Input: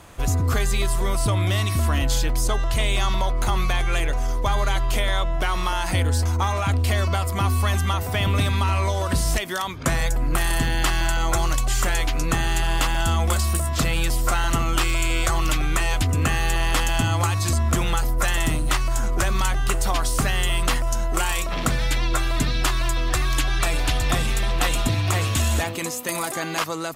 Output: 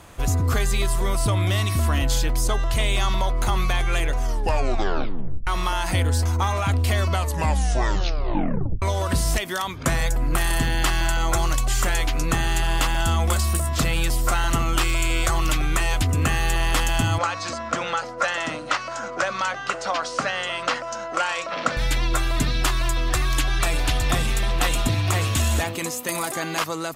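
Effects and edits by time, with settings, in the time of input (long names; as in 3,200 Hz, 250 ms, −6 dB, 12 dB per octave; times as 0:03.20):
0:04.24: tape stop 1.23 s
0:07.10: tape stop 1.72 s
0:17.18–0:21.77: loudspeaker in its box 290–6,000 Hz, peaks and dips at 380 Hz −9 dB, 540 Hz +8 dB, 1,400 Hz +6 dB, 3,500 Hz −3 dB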